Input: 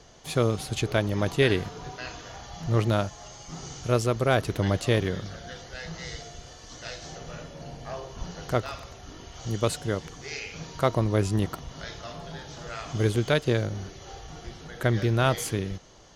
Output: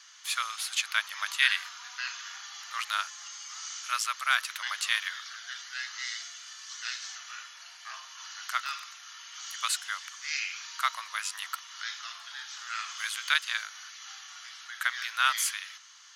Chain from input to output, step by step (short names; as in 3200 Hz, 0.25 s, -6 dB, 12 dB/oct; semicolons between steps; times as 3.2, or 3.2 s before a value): steep high-pass 1200 Hz 36 dB/oct; gain +4.5 dB